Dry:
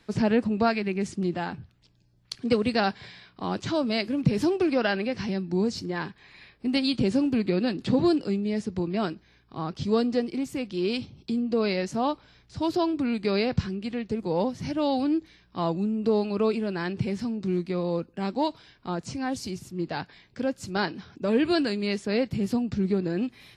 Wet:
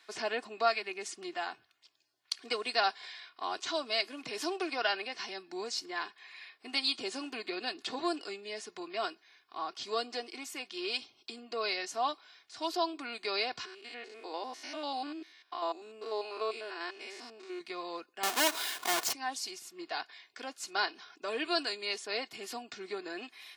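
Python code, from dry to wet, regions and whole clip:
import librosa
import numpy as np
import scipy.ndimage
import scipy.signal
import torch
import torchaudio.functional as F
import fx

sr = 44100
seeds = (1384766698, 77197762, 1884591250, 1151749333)

y = fx.chain(x, sr, fx.spec_steps(hold_ms=100),
    fx.brickwall_highpass(low_hz=220.0), at=(13.65, 17.61))
y = fx.chain(y, sr, fx.halfwave_hold(),
    fx.highpass(hz=49.0, slope=12),
    fx.env_flatten(amount_pct=50), at=(18.23, 19.13))
y = scipy.signal.sosfilt(scipy.signal.butter(2, 920.0, 'highpass', fs=sr, output='sos'), y)
y = fx.dynamic_eq(y, sr, hz=1900.0, q=1.1, threshold_db=-44.0, ratio=4.0, max_db=-4)
y = y + 0.6 * np.pad(y, (int(2.8 * sr / 1000.0), 0))[:len(y)]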